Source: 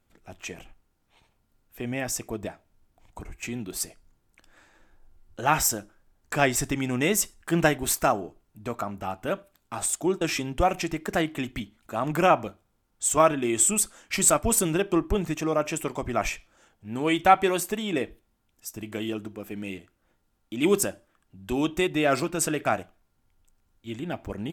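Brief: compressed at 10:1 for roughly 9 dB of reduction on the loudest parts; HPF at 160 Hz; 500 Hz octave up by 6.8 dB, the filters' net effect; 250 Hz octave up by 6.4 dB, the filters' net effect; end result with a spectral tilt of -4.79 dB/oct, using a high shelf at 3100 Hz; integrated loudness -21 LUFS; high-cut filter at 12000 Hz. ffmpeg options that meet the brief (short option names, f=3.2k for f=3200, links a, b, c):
-af "highpass=160,lowpass=12k,equalizer=f=250:t=o:g=6.5,equalizer=f=500:t=o:g=7.5,highshelf=f=3.1k:g=-6,acompressor=threshold=-19dB:ratio=10,volume=6dB"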